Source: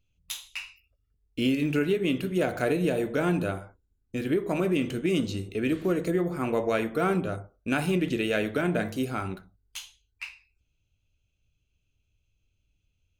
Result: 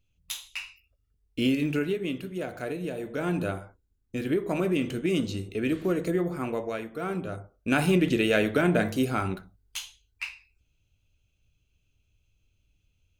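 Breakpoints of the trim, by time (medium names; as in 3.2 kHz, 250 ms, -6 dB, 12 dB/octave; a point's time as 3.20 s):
1.54 s +0.5 dB
2.34 s -7.5 dB
2.99 s -7.5 dB
3.45 s -0.5 dB
6.31 s -0.5 dB
6.89 s -9 dB
7.81 s +3.5 dB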